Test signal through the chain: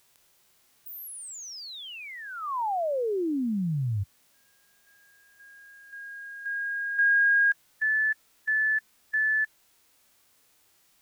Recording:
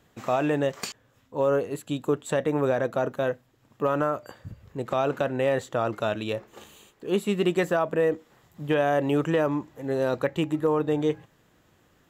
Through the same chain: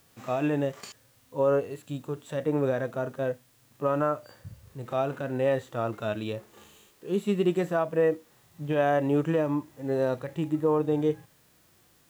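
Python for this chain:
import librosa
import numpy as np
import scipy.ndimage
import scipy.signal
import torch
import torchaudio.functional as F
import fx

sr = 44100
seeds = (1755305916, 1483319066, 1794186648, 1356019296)

y = fx.quant_dither(x, sr, seeds[0], bits=10, dither='triangular')
y = fx.hpss(y, sr, part='percussive', gain_db=-13)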